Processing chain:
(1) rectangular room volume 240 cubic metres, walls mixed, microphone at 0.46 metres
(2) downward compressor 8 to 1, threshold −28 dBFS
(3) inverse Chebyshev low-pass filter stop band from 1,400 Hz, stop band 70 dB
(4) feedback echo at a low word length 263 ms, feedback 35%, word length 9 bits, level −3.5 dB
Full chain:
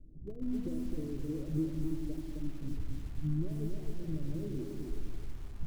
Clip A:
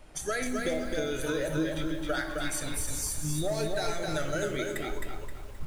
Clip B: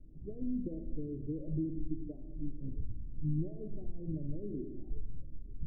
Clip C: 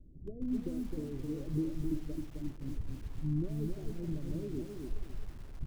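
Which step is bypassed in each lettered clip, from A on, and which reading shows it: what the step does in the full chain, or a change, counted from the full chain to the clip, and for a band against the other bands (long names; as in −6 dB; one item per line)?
3, 125 Hz band −21.5 dB
4, change in crest factor +1.5 dB
1, change in crest factor +2.0 dB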